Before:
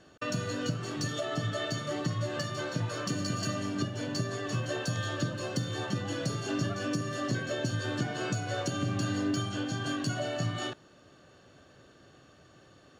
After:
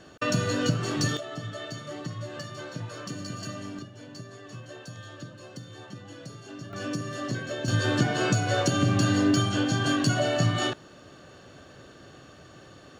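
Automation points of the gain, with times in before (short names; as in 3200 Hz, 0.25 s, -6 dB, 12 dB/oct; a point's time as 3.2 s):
+7 dB
from 1.17 s -4 dB
from 3.79 s -10 dB
from 6.73 s 0 dB
from 7.68 s +8 dB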